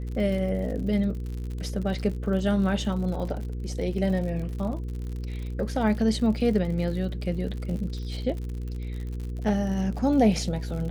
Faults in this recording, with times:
crackle 66/s -34 dBFS
hum 60 Hz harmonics 8 -32 dBFS

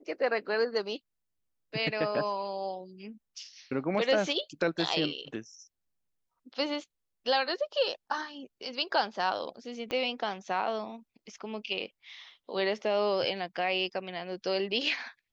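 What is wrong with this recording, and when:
9.91 pop -20 dBFS

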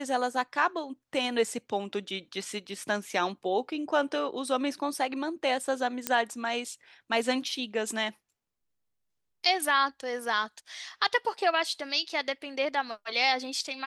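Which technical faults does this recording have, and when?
6.07 pop -9 dBFS

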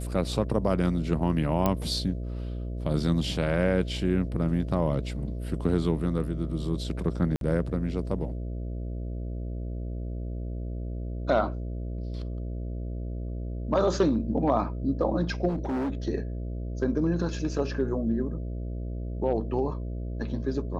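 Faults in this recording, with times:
buzz 60 Hz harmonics 11 -33 dBFS
1.66 pop -11 dBFS
7.36–7.41 gap 52 ms
15.48–15.91 clipped -26 dBFS

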